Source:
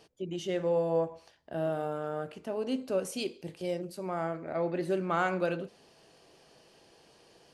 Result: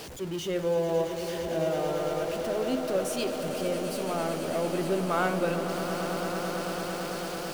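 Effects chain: zero-crossing step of -36.5 dBFS; swelling echo 0.111 s, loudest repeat 8, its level -12.5 dB

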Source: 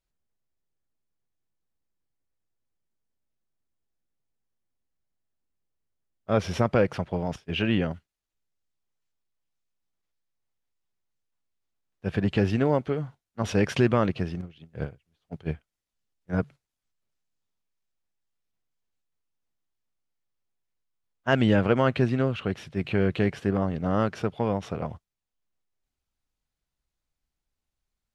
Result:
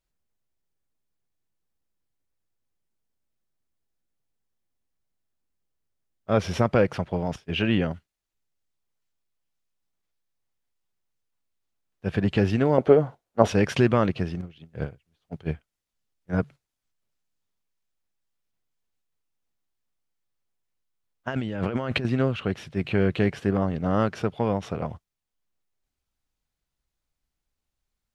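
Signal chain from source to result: 12.78–13.48 bell 570 Hz +14.5 dB 2 oct; 21.28–22.05 negative-ratio compressor -30 dBFS, ratio -1; gain +1.5 dB

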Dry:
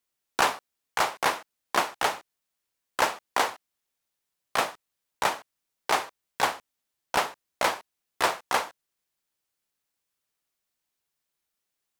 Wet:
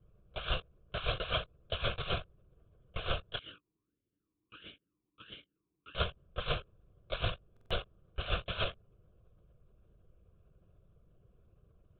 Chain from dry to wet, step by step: spectrum mirrored in octaves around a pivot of 1800 Hz; wrapped overs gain 24 dB; negative-ratio compressor -35 dBFS, ratio -0.5; LPC vocoder at 8 kHz whisper; bell 360 Hz -4 dB 0.49 oct; fixed phaser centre 1300 Hz, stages 8; stuck buffer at 7.52, samples 2048, times 3; 3.39–5.95 vowel sweep i-u 1.5 Hz; gain +6 dB

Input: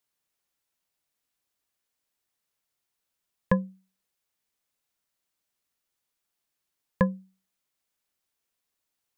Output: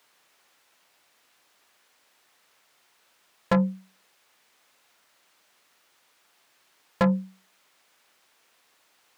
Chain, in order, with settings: soft clip -25 dBFS, distortion -6 dB; overdrive pedal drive 30 dB, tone 2200 Hz, clips at -13 dBFS; gain +2.5 dB

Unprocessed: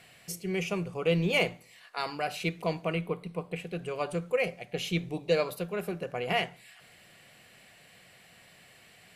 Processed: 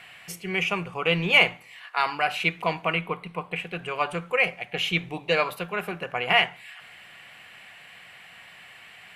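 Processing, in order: band shelf 1600 Hz +11 dB 2.4 oct

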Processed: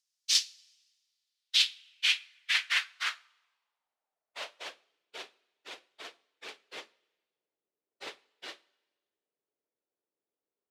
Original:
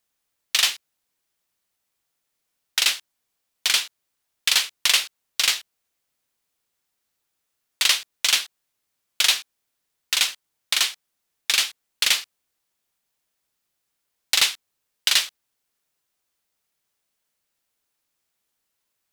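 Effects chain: two-slope reverb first 0.62 s, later 2.5 s, from -18 dB, DRR 14 dB; plain phase-vocoder stretch 0.56×; band-pass sweep 5300 Hz -> 410 Hz, 1–5; gain +4.5 dB

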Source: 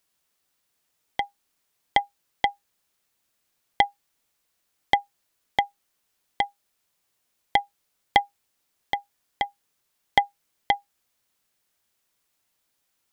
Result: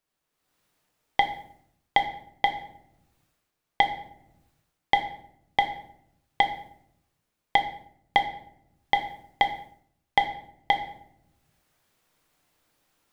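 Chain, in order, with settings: shoebox room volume 170 m³, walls mixed, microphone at 0.5 m; AGC gain up to 13 dB; mismatched tape noise reduction decoder only; gain -3 dB

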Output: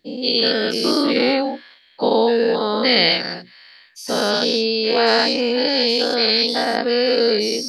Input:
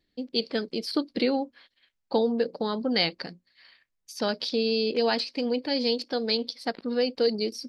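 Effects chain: spectral dilation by 0.24 s; low shelf 160 Hz -8.5 dB; gain +4 dB

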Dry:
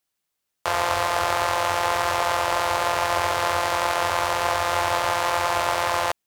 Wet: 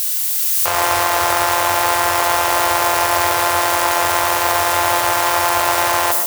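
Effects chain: switching spikes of -16 dBFS; AGC gain up to 6.5 dB; on a send: reverb RT60 0.35 s, pre-delay 0.105 s, DRR 6 dB

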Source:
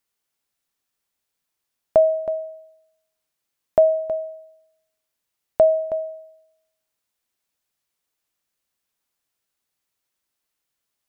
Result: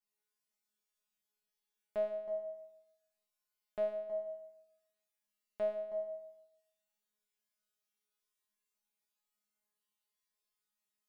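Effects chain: compressor, threshold -29 dBFS, peak gain reduction 16.5 dB; resonator 210 Hz, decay 0.84 s, mix 100%; gain +8 dB

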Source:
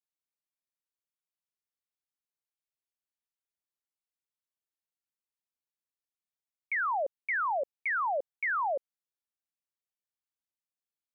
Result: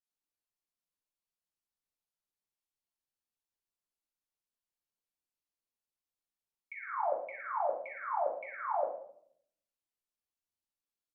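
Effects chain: treble ducked by the level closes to 1000 Hz, closed at -31.5 dBFS; bands offset in time highs, lows 60 ms, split 2000 Hz; shoebox room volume 110 m³, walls mixed, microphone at 1.6 m; gain -7.5 dB

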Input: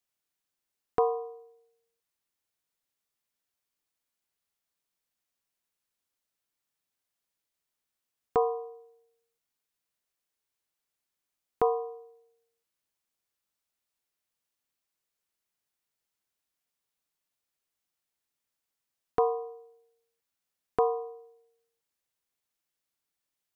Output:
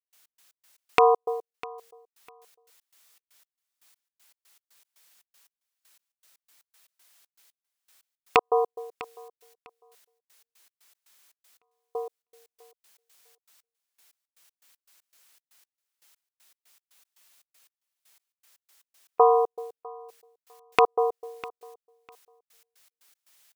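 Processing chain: rattling part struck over -34 dBFS, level -17 dBFS; HPF 1200 Hz 6 dB/oct; compressor 6:1, threshold -37 dBFS, peak gain reduction 10 dB; step gate ".x.x.x.xx.x...x." 118 bpm -60 dB; on a send: feedback echo 0.651 s, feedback 19%, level -23.5 dB; on the sum: maximiser +26 dB; gain -1 dB

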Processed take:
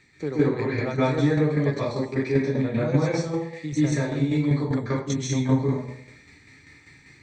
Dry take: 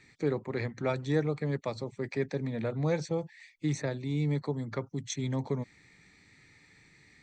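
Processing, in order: plate-style reverb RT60 0.71 s, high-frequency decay 0.7×, pre-delay 0.12 s, DRR -8.5 dB; tremolo saw down 5.1 Hz, depth 50%; gain +1.5 dB

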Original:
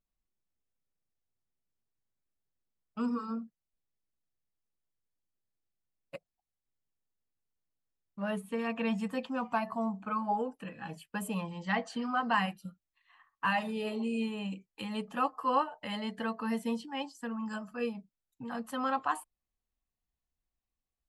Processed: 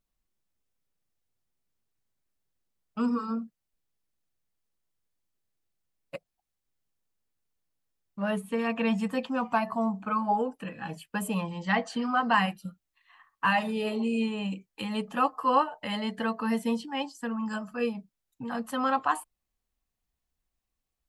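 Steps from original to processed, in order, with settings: 13.98–14.43 steep low-pass 9000 Hz; gain +5 dB

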